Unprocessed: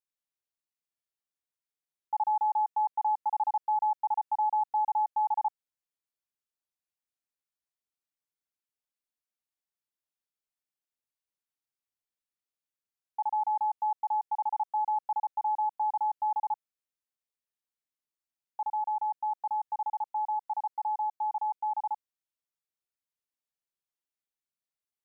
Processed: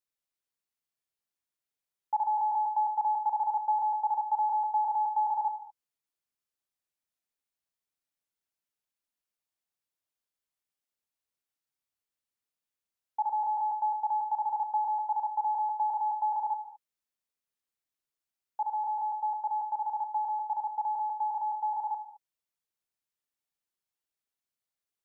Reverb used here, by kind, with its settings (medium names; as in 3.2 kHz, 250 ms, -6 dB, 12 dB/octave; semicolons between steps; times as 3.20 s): gated-style reverb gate 240 ms flat, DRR 10.5 dB; trim +1 dB